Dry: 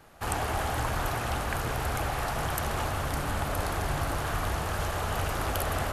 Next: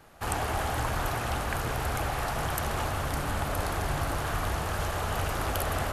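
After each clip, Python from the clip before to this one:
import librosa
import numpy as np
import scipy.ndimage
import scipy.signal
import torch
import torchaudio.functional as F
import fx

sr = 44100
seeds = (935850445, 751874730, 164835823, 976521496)

y = x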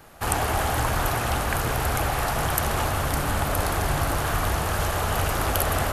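y = fx.high_shelf(x, sr, hz=11000.0, db=7.5)
y = y * librosa.db_to_amplitude(5.5)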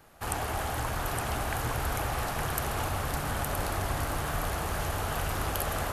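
y = x + 10.0 ** (-5.0 / 20.0) * np.pad(x, (int(865 * sr / 1000.0), 0))[:len(x)]
y = y * librosa.db_to_amplitude(-8.0)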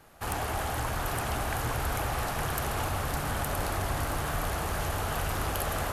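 y = fx.fold_sine(x, sr, drive_db=6, ceiling_db=-12.0)
y = y * librosa.db_to_amplitude(-9.0)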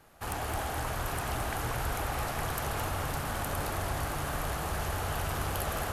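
y = x + 10.0 ** (-6.5 / 20.0) * np.pad(x, (int(216 * sr / 1000.0), 0))[:len(x)]
y = y * librosa.db_to_amplitude(-3.0)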